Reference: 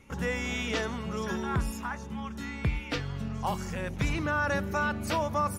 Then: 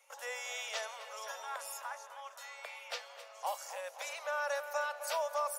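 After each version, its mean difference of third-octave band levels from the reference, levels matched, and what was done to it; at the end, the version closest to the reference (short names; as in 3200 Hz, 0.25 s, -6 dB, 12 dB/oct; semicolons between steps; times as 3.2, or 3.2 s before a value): 15.5 dB: steep high-pass 540 Hz 72 dB/oct; bell 1700 Hz -11.5 dB 3 oct; darkening echo 0.258 s, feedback 68%, low-pass 2900 Hz, level -11 dB; gain +3 dB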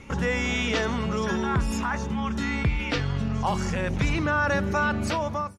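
3.5 dB: ending faded out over 0.69 s; LPF 7300 Hz 12 dB/oct; in parallel at -2.5 dB: negative-ratio compressor -38 dBFS, ratio -1; on the sum: gain +3.5 dB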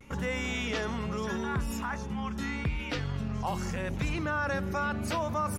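2.5 dB: high shelf 10000 Hz -5.5 dB; in parallel at -2 dB: negative-ratio compressor -37 dBFS, ratio -1; on the sum: vibrato 0.8 Hz 52 cents; gain -3.5 dB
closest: third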